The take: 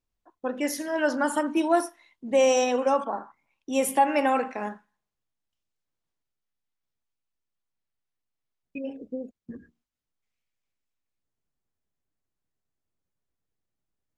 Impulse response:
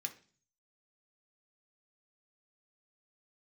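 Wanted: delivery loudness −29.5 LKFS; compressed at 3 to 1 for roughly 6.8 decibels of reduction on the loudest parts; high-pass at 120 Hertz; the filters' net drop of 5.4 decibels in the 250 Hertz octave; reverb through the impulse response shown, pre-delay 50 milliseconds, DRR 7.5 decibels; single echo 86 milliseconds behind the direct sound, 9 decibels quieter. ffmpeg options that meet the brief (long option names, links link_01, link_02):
-filter_complex "[0:a]highpass=120,equalizer=frequency=250:width_type=o:gain=-6.5,acompressor=threshold=-26dB:ratio=3,aecho=1:1:86:0.355,asplit=2[link_01][link_02];[1:a]atrim=start_sample=2205,adelay=50[link_03];[link_02][link_03]afir=irnorm=-1:irlink=0,volume=-6dB[link_04];[link_01][link_04]amix=inputs=2:normalize=0,volume=1dB"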